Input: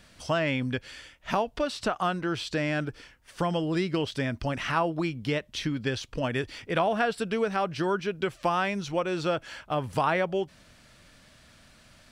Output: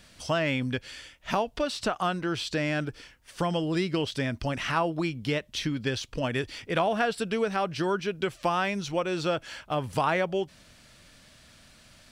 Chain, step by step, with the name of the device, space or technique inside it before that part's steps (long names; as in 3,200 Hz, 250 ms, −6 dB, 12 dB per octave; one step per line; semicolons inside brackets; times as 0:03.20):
exciter from parts (in parallel at −7 dB: high-pass filter 2,000 Hz 12 dB per octave + soft clipping −31 dBFS, distortion −12 dB)